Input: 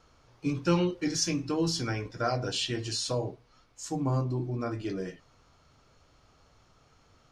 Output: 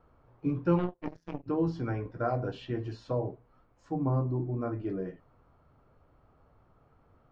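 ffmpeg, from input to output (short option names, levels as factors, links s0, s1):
-filter_complex "[0:a]lowpass=1200,asplit=3[s0][s1][s2];[s0]afade=t=out:st=0.78:d=0.02[s3];[s1]aeval=exprs='0.119*(cos(1*acos(clip(val(0)/0.119,-1,1)))-cos(1*PI/2))+0.0133*(cos(2*acos(clip(val(0)/0.119,-1,1)))-cos(2*PI/2))+0.0376*(cos(3*acos(clip(val(0)/0.119,-1,1)))-cos(3*PI/2))+0.00237*(cos(6*acos(clip(val(0)/0.119,-1,1)))-cos(6*PI/2))':c=same,afade=t=in:st=0.78:d=0.02,afade=t=out:st=1.46:d=0.02[s4];[s2]afade=t=in:st=1.46:d=0.02[s5];[s3][s4][s5]amix=inputs=3:normalize=0"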